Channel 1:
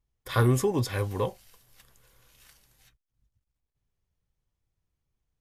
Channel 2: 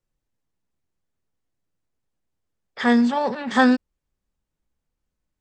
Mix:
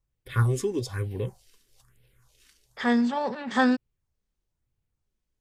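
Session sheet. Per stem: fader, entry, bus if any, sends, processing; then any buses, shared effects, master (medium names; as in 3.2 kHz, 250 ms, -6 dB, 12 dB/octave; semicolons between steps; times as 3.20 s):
-2.0 dB, 0.00 s, no send, phase shifter stages 4, 1.1 Hz, lowest notch 110–1200 Hz; graphic EQ with 31 bands 125 Hz +6 dB, 400 Hz +5 dB, 12.5 kHz -10 dB
-5.5 dB, 0.00 s, no send, none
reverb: none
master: none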